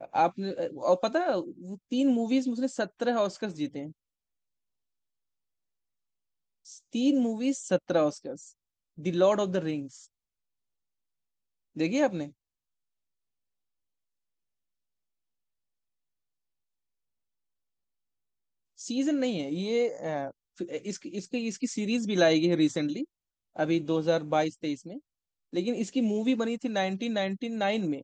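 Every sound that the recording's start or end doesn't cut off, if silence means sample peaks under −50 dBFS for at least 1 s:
0:06.65–0:10.05
0:11.76–0:12.31

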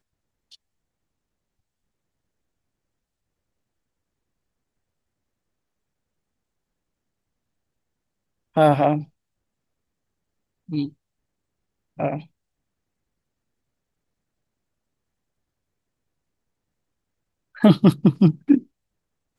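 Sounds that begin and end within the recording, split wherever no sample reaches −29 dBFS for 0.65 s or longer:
0:08.57–0:09.02
0:10.72–0:10.86
0:12.00–0:12.19
0:17.62–0:18.59

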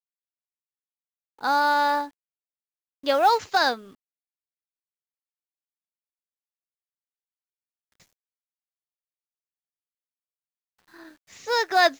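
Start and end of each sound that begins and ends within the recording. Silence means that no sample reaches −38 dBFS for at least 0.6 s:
0:01.41–0:02.08
0:03.04–0:03.81

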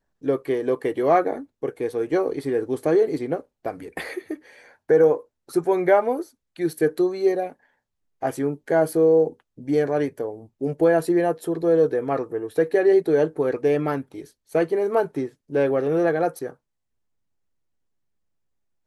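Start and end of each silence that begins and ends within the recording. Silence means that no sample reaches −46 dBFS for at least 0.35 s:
0:07.53–0:08.22

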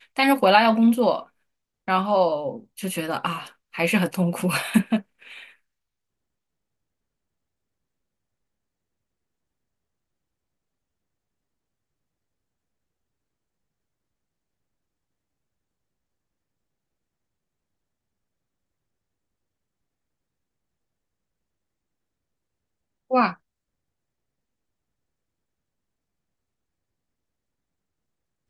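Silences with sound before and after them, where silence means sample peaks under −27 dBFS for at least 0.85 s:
0:04.99–0:23.11

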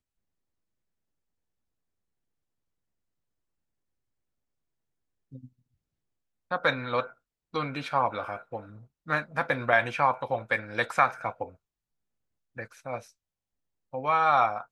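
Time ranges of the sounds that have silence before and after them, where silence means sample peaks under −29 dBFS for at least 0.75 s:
0:06.52–0:11.44
0:12.59–0:12.98

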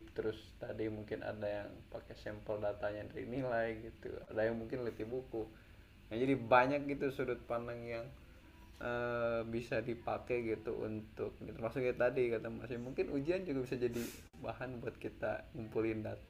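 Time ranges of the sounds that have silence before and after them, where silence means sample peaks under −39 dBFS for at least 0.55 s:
0:06.12–0:08.02

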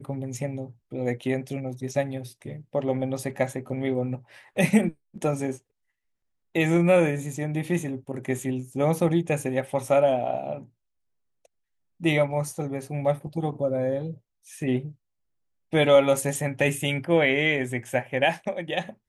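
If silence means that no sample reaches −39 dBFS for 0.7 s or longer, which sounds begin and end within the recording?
0:06.55–0:10.64
0:12.01–0:14.92

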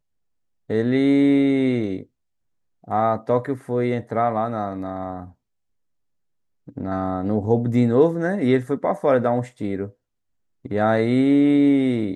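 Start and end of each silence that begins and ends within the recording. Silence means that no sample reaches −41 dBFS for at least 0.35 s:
0:02.03–0:02.84
0:05.30–0:06.68
0:09.90–0:10.65

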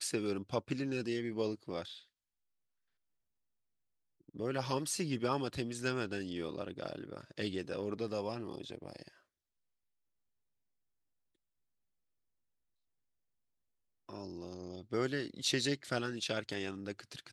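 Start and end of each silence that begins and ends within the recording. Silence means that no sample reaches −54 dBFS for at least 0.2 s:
0:02.03–0:04.28
0:09.09–0:14.09

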